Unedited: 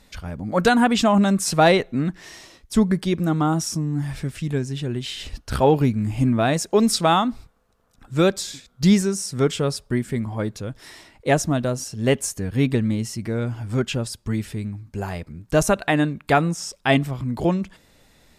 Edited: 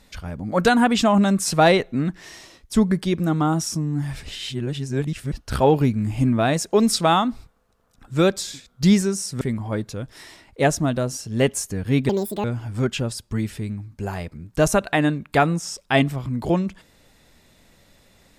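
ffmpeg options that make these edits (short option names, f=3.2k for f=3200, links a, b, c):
-filter_complex "[0:a]asplit=6[a][b][c][d][e][f];[a]atrim=end=4.232[g];[b]atrim=start=4.228:end=5.322,asetpts=PTS-STARTPTS,areverse[h];[c]atrim=start=5.318:end=9.412[i];[d]atrim=start=10.078:end=12.764[j];[e]atrim=start=12.76:end=13.39,asetpts=PTS-STARTPTS,asetrate=79380,aresample=44100[k];[f]atrim=start=13.386[l];[g][h]acrossfade=d=0.004:c1=hsin:c2=hsin[m];[m][i]acrossfade=d=0.004:c1=hsin:c2=hsin[n];[n][j]acrossfade=d=0.004:c1=hsin:c2=hsin[o];[o][k]acrossfade=d=0.004:c1=hsin:c2=hsin[p];[p][l]acrossfade=d=0.004:c1=hsin:c2=hsin"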